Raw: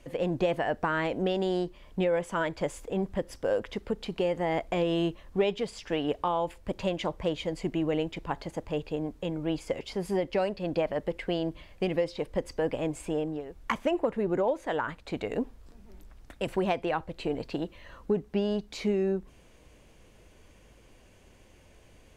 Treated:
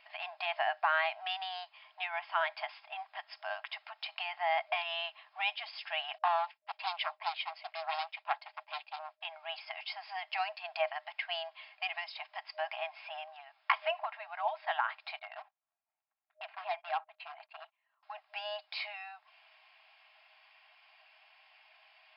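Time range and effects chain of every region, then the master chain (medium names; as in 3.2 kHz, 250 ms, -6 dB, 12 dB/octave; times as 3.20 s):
6.18–9.21 s: expander -37 dBFS + high-pass 370 Hz + loudspeaker Doppler distortion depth 0.64 ms
15.19–18.03 s: gate -43 dBFS, range -25 dB + tape spacing loss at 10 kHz 32 dB + overload inside the chain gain 26.5 dB
whole clip: FFT band-pass 620–5300 Hz; peaking EQ 2.5 kHz +5 dB 0.45 oct; comb 3.7 ms, depth 38%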